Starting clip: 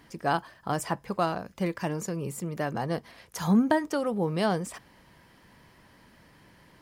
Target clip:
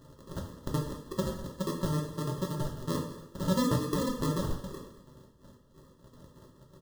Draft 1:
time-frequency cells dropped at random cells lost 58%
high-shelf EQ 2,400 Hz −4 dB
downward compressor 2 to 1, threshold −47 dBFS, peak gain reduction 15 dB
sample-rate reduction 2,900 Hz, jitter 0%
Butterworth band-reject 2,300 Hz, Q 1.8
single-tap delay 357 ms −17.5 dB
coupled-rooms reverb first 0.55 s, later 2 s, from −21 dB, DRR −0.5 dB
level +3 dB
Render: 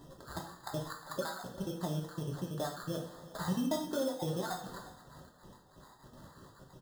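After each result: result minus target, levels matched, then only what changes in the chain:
echo 156 ms late; sample-rate reduction: distortion −14 dB; downward compressor: peak gain reduction +5.5 dB
change: single-tap delay 201 ms −17.5 dB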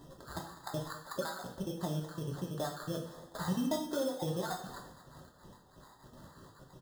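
sample-rate reduction: distortion −14 dB; downward compressor: peak gain reduction +5.5 dB
change: sample-rate reduction 750 Hz, jitter 0%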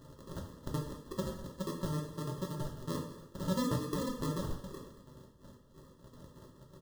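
downward compressor: peak gain reduction +5.5 dB
change: downward compressor 2 to 1, threshold −36.5 dBFS, peak gain reduction 10 dB

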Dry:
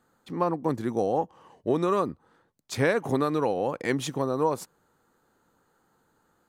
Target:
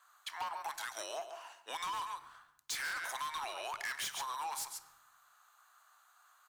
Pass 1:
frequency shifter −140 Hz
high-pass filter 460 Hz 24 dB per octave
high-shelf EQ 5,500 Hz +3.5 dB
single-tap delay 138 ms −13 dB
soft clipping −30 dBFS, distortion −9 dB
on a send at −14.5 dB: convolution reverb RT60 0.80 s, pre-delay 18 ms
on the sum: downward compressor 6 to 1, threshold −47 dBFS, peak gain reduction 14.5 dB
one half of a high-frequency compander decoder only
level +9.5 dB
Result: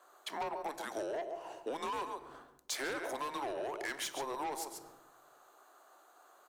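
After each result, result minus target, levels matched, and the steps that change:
500 Hz band +9.0 dB; soft clipping: distortion −4 dB
change: high-pass filter 1,100 Hz 24 dB per octave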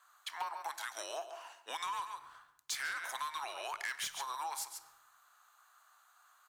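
soft clipping: distortion −6 dB
change: soft clipping −38.5 dBFS, distortion −5 dB

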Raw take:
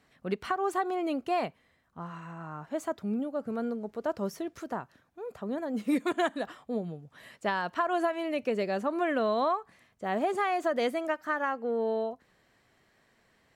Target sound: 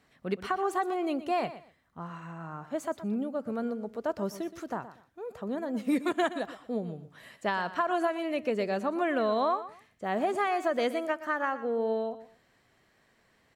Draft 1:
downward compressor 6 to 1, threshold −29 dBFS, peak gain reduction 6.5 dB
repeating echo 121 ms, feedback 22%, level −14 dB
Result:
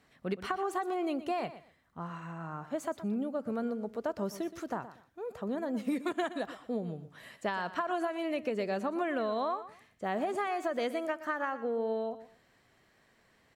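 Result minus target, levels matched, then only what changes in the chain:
downward compressor: peak gain reduction +6.5 dB
remove: downward compressor 6 to 1, threshold −29 dBFS, peak gain reduction 6.5 dB

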